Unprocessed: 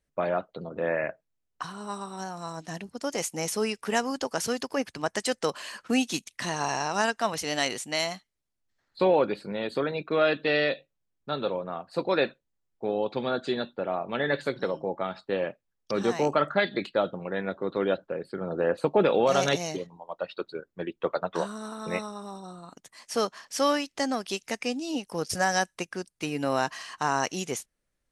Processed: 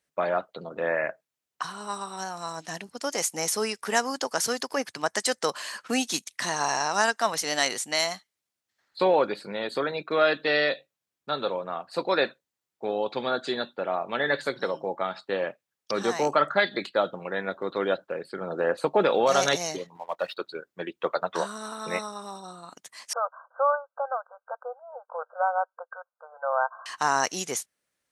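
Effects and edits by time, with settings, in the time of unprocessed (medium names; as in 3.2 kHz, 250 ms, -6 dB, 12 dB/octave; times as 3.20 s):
19.95–20.37 s: waveshaping leveller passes 1
23.13–26.86 s: brick-wall FIR band-pass 480–1600 Hz
whole clip: dynamic bell 2.7 kHz, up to -6 dB, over -48 dBFS, Q 2.4; high-pass 100 Hz; bass shelf 490 Hz -11 dB; trim +5.5 dB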